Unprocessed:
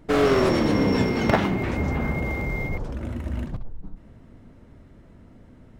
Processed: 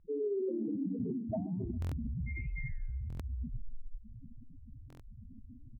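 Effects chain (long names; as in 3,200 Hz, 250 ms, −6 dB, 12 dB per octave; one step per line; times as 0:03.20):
expanding power law on the bin magnitudes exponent 2.9
mains-hum notches 50/100/150/200/250 Hz
gate on every frequency bin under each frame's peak −10 dB strong
low-pass filter 2,200 Hz
parametric band 72 Hz −4.5 dB 0.33 octaves
reversed playback
downward compressor 4 to 1, threshold −37 dBFS, peak gain reduction 16.5 dB
reversed playback
flanger 1.2 Hz, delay 5.9 ms, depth 5.4 ms, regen −88%
on a send: repeating echo 134 ms, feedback 48%, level −21.5 dB
on the sum: buffer that repeats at 0:01.80/0:03.08/0:04.88, samples 1,024, times 4
level +5.5 dB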